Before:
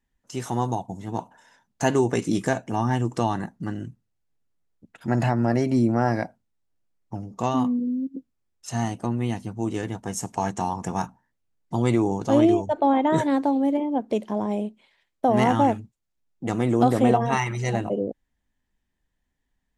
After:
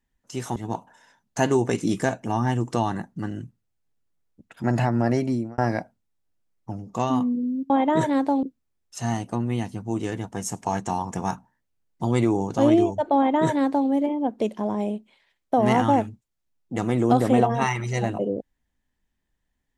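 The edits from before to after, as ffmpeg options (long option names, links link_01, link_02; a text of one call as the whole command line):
ffmpeg -i in.wav -filter_complex "[0:a]asplit=5[link_01][link_02][link_03][link_04][link_05];[link_01]atrim=end=0.562[link_06];[link_02]atrim=start=0.998:end=6.02,asetpts=PTS-STARTPTS,afade=type=out:start_time=4.622:duration=0.4[link_07];[link_03]atrim=start=6.02:end=8.142,asetpts=PTS-STARTPTS,afade=type=in:duration=0.004:curve=hsin[link_08];[link_04]atrim=start=12.868:end=13.602[link_09];[link_05]atrim=start=8.138[link_10];[link_07][link_08]concat=n=2:v=0:a=1[link_11];[link_06][link_11]acrossfade=duration=0.004:curve1=hsin:curve2=hsin[link_12];[link_12][link_09]acrossfade=duration=0.004:curve1=hsin:curve2=hsin[link_13];[link_13][link_10]acrossfade=duration=0.004:curve1=hsin:curve2=hsin" out.wav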